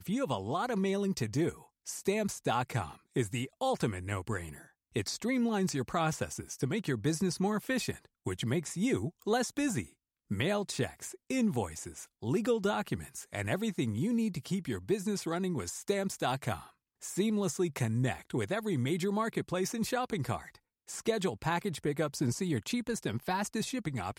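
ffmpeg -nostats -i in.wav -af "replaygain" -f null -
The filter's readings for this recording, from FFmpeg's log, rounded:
track_gain = +14.3 dB
track_peak = 0.095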